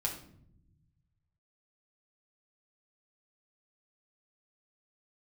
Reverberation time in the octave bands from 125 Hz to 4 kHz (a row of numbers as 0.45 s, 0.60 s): 2.2 s, 1.6 s, 0.85 s, 0.55 s, 0.50 s, 0.45 s